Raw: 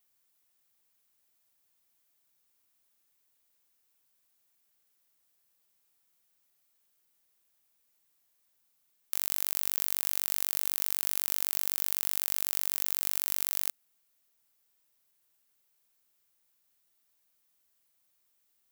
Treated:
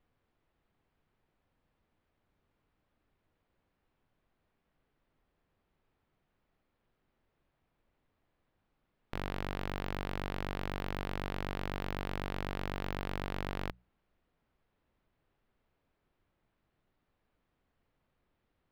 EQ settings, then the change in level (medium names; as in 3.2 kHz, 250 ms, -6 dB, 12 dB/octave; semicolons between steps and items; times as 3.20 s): distance through air 360 m; tilt EQ -3 dB/octave; hum notches 60/120/180 Hz; +8.5 dB